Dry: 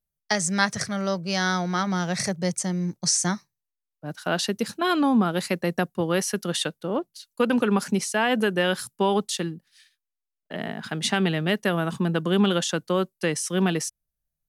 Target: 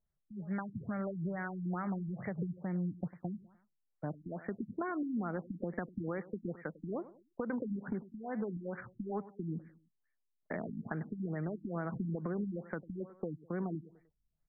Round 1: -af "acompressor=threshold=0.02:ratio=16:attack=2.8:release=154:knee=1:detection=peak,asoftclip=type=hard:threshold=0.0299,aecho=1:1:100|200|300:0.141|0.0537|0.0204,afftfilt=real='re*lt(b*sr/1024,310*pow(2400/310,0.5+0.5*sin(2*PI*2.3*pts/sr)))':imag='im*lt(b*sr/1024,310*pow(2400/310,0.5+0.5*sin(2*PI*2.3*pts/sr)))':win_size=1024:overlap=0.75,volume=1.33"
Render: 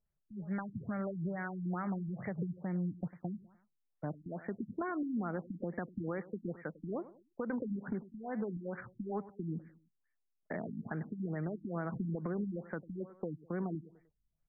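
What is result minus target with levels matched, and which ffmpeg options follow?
hard clipper: distortion +16 dB
-af "acompressor=threshold=0.02:ratio=16:attack=2.8:release=154:knee=1:detection=peak,asoftclip=type=hard:threshold=0.0841,aecho=1:1:100|200|300:0.141|0.0537|0.0204,afftfilt=real='re*lt(b*sr/1024,310*pow(2400/310,0.5+0.5*sin(2*PI*2.3*pts/sr)))':imag='im*lt(b*sr/1024,310*pow(2400/310,0.5+0.5*sin(2*PI*2.3*pts/sr)))':win_size=1024:overlap=0.75,volume=1.33"

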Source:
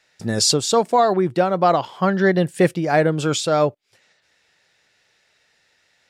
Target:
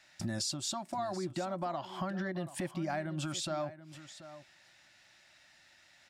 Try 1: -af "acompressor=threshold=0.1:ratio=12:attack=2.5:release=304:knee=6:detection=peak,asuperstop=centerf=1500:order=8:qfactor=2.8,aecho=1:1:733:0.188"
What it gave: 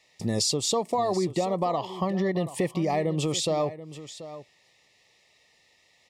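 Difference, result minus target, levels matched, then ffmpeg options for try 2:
compression: peak gain reduction -9.5 dB; 2 kHz band -6.0 dB
-af "acompressor=threshold=0.0299:ratio=12:attack=2.5:release=304:knee=6:detection=peak,asuperstop=centerf=450:order=8:qfactor=2.8,aecho=1:1:733:0.188"

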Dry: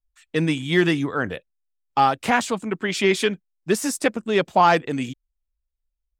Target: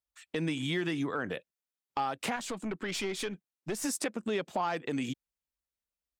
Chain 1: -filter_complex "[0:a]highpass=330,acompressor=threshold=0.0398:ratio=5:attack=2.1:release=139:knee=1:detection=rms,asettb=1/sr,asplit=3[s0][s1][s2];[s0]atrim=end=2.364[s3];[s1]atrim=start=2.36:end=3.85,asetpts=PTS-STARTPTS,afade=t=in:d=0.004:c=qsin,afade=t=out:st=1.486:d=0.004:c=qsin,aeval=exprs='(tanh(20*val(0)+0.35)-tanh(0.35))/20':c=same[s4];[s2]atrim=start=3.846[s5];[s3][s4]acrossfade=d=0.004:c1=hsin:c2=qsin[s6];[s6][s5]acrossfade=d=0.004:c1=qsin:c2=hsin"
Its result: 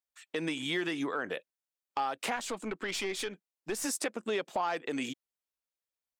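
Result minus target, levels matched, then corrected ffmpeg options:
125 Hz band -8.5 dB
-filter_complex "[0:a]highpass=140,acompressor=threshold=0.0398:ratio=5:attack=2.1:release=139:knee=1:detection=rms,asettb=1/sr,asplit=3[s0][s1][s2];[s0]atrim=end=2.364[s3];[s1]atrim=start=2.36:end=3.85,asetpts=PTS-STARTPTS,afade=t=in:d=0.004:c=qsin,afade=t=out:st=1.486:d=0.004:c=qsin,aeval=exprs='(tanh(20*val(0)+0.35)-tanh(0.35))/20':c=same[s4];[s2]atrim=start=3.846[s5];[s3][s4]acrossfade=d=0.004:c1=hsin:c2=qsin[s6];[s6][s5]acrossfade=d=0.004:c1=qsin:c2=hsin"

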